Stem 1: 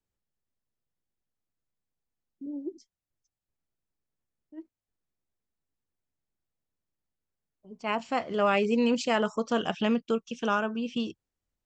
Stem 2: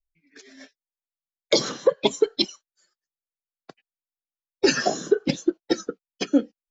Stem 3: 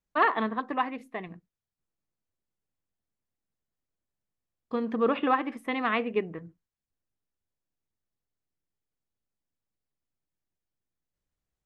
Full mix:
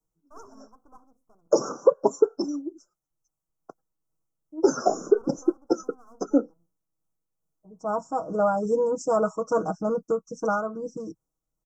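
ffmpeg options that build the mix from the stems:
-filter_complex "[0:a]aecho=1:1:6.3:0.93,tremolo=f=2.4:d=0.38,volume=2dB[a];[1:a]bass=f=250:g=-10,treble=f=4k:g=-9,volume=2dB[b];[2:a]bandreject=f=60:t=h:w=6,bandreject=f=120:t=h:w=6,bandreject=f=180:t=h:w=6,aeval=exprs='max(val(0),0)':c=same,adelay=150,volume=-19dB[c];[a][b][c]amix=inputs=3:normalize=0,asuperstop=centerf=2800:order=20:qfactor=0.7"

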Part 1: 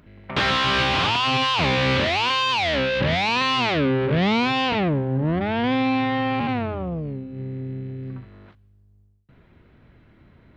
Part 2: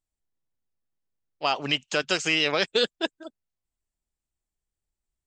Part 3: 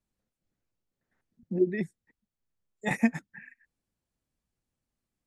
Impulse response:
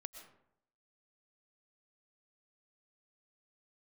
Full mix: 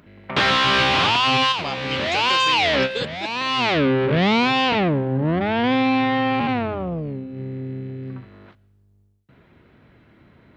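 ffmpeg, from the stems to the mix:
-filter_complex "[0:a]highpass=f=140:p=1,volume=2.5dB,asplit=2[a][b];[b]volume=-15.5dB[c];[1:a]adelay=200,volume=-5dB[d];[2:a]volume=-20dB,asplit=2[e][f];[f]apad=whole_len=466101[g];[a][g]sidechaincompress=threshold=-56dB:ratio=8:attack=36:release=543[h];[3:a]atrim=start_sample=2205[i];[c][i]afir=irnorm=-1:irlink=0[j];[h][d][e][j]amix=inputs=4:normalize=0"

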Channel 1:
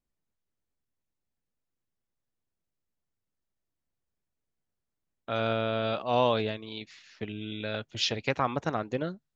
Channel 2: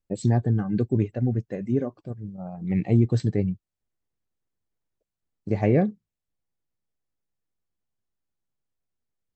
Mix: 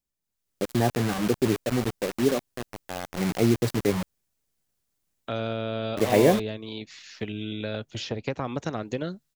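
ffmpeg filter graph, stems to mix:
-filter_complex "[0:a]highshelf=f=3.6k:g=11,acrossover=split=610|1400[a][b][c];[a]acompressor=threshold=-32dB:ratio=4[d];[b]acompressor=threshold=-47dB:ratio=4[e];[c]acompressor=threshold=-46dB:ratio=4[f];[d][e][f]amix=inputs=3:normalize=0,volume=-5dB[g];[1:a]highpass=f=96:w=0.5412,highpass=f=96:w=1.3066,bass=f=250:g=-12,treble=f=4k:g=-6,acrusher=bits=5:mix=0:aa=0.000001,adelay=500,volume=-4.5dB[h];[g][h]amix=inputs=2:normalize=0,dynaudnorm=f=100:g=9:m=10dB"

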